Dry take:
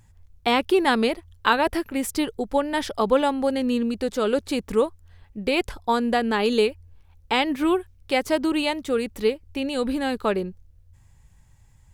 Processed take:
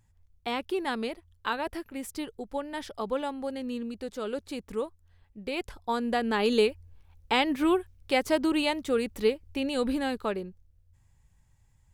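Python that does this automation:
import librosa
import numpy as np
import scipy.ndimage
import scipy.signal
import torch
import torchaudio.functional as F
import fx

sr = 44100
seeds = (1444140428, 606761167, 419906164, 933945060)

y = fx.gain(x, sr, db=fx.line((5.45, -11.0), (6.52, -3.0), (9.94, -3.0), (10.42, -9.0)))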